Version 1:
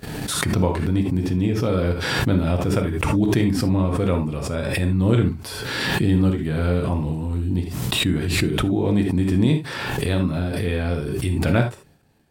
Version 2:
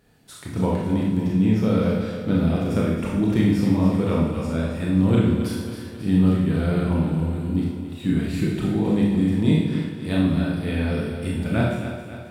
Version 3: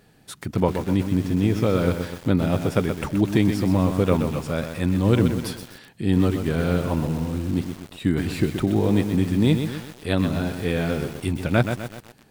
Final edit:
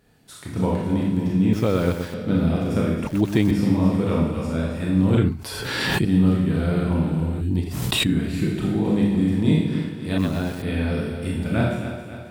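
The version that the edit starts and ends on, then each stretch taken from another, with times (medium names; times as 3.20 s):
2
1.53–2.14 s: from 3
3.07–3.51 s: from 3
5.17–6.05 s: from 1
7.41–8.07 s: from 1
10.18–10.62 s: from 3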